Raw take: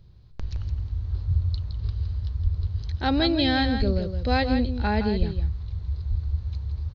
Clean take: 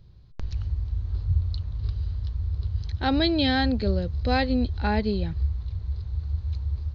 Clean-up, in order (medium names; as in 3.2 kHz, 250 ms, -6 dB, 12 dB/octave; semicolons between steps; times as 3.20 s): de-plosive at 2.43/3.78/5.18/6.09 s; inverse comb 165 ms -8.5 dB